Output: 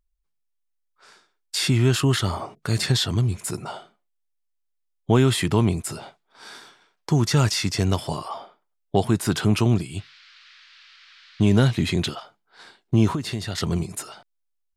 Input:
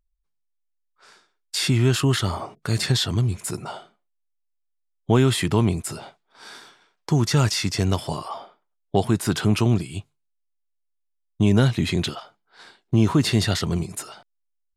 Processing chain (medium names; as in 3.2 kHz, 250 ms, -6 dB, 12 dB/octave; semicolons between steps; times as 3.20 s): 9.97–11.82 s: band noise 1.3–4.6 kHz -51 dBFS; 13.12–13.58 s: compression 6:1, threshold -25 dBFS, peak gain reduction 11 dB